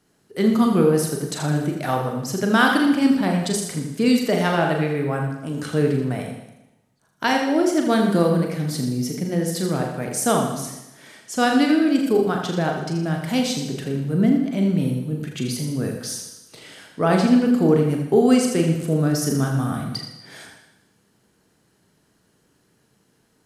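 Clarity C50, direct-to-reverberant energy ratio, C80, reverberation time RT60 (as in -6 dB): 4.5 dB, 1.0 dB, 5.5 dB, 0.95 s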